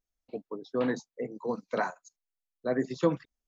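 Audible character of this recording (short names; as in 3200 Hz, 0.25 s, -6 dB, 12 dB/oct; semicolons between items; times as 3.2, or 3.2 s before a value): noise floor -91 dBFS; spectral tilt -3.5 dB/oct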